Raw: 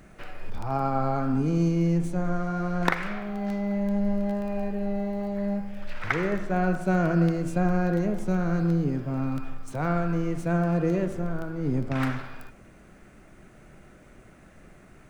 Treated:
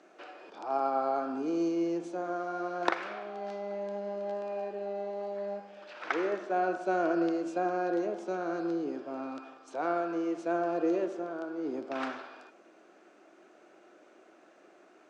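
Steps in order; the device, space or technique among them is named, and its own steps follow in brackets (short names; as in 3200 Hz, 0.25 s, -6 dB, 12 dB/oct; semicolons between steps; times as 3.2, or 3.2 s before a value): phone speaker on a table (speaker cabinet 330–6600 Hz, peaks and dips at 330 Hz +6 dB, 700 Hz +4 dB, 2000 Hz -7 dB); gain -3.5 dB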